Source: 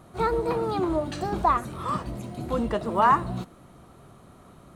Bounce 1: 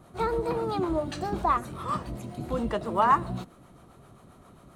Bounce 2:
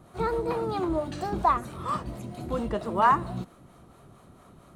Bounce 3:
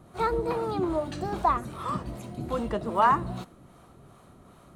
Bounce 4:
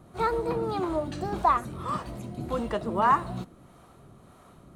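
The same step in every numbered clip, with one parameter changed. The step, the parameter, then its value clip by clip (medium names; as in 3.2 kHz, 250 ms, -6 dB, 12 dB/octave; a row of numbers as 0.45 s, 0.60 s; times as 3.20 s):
harmonic tremolo, rate: 7.5 Hz, 4.4 Hz, 2.5 Hz, 1.7 Hz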